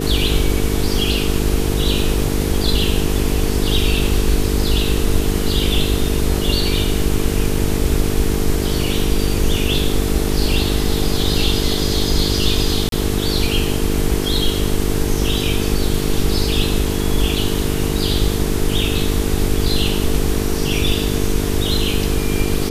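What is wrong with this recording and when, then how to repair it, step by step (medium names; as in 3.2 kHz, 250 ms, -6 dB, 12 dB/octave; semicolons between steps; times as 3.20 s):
buzz 50 Hz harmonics 9 -22 dBFS
12.89–12.92 s: dropout 32 ms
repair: de-hum 50 Hz, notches 9; interpolate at 12.89 s, 32 ms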